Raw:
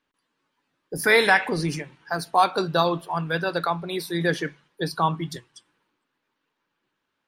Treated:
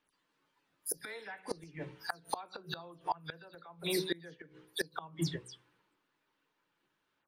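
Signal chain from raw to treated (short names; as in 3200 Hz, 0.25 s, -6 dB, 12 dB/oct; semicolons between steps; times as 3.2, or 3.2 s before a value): spectral delay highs early, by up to 0.101 s; de-hum 62.53 Hz, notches 9; flipped gate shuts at -18 dBFS, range -26 dB; gain -2 dB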